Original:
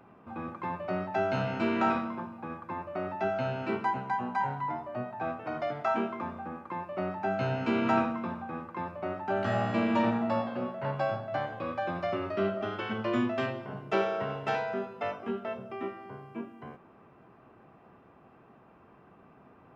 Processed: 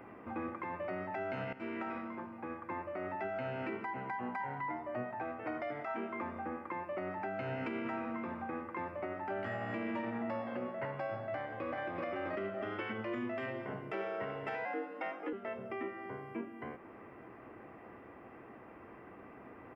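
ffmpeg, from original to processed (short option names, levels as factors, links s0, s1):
-filter_complex "[0:a]asplit=2[s0][s1];[s1]afade=t=in:st=11.34:d=0.01,afade=t=out:st=11.97:d=0.01,aecho=0:1:380|760|1140:0.944061|0.188812|0.0377624[s2];[s0][s2]amix=inputs=2:normalize=0,asettb=1/sr,asplit=3[s3][s4][s5];[s3]atrim=end=14.654[s6];[s4]atrim=start=14.65:end=15.33,asetpts=PTS-STARTPTS,afade=t=in:d=0.004:c=qsin,afade=t=out:st=0.676:d=0.004:c=qsin,afreqshift=75[s7];[s5]atrim=start=15.326[s8];[s6][s7]acrossfade=d=0.004:c1=hsin:c2=qsin[s9];[s9][s8]acrossfade=d=0.004:c1=qsin:c2=hsin,asplit=2[s10][s11];[s10]atrim=end=1.53,asetpts=PTS-STARTPTS,afade=t=out:st=1.526:d=0.004:c=hsin:silence=0.16788[s12];[s11]atrim=start=1.53,asetpts=PTS-STARTPTS,afade=t=in:d=1.74:silence=0.16788[s13];[s12][s13]concat=n=2:v=0:a=1,equalizer=f=160:t=o:w=0.33:g=-9,equalizer=f=315:t=o:w=0.33:g=6,equalizer=f=500:t=o:w=0.33:g=4,equalizer=f=2000:t=o:w=0.33:g=11,equalizer=f=4000:t=o:w=0.33:g=-10,equalizer=f=6300:t=o:w=0.33:g=-11,acompressor=threshold=0.00355:ratio=1.5,alimiter=level_in=2.66:limit=0.0631:level=0:latency=1:release=177,volume=0.376,volume=1.41"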